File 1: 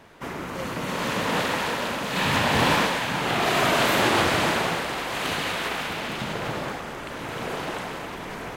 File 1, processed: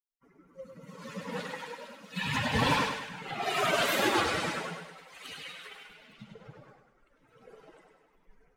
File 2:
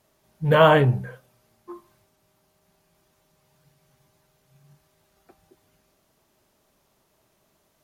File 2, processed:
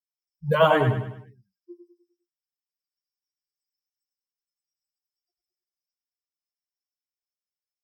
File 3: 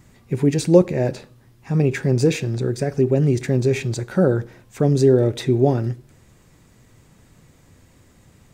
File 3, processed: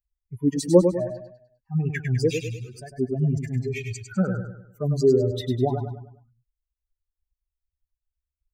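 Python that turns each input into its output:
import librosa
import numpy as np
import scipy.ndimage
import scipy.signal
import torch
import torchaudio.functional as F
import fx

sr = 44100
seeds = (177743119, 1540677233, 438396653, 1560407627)

y = fx.bin_expand(x, sr, power=3.0)
y = fx.echo_feedback(y, sr, ms=101, feedback_pct=42, wet_db=-7)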